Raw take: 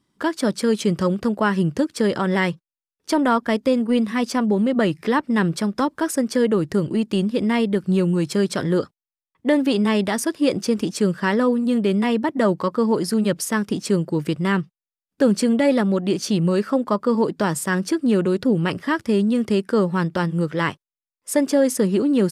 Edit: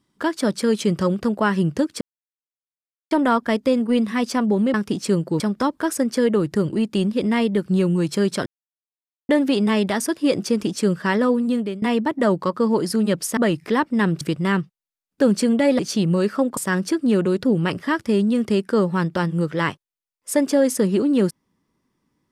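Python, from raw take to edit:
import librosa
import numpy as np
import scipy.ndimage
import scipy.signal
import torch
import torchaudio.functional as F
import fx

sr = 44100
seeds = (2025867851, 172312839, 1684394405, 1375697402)

y = fx.edit(x, sr, fx.silence(start_s=2.01, length_s=1.1),
    fx.swap(start_s=4.74, length_s=0.84, other_s=13.55, other_length_s=0.66),
    fx.silence(start_s=8.64, length_s=0.83),
    fx.fade_out_to(start_s=11.66, length_s=0.34, floor_db=-19.5),
    fx.cut(start_s=15.79, length_s=0.34),
    fx.cut(start_s=16.91, length_s=0.66), tone=tone)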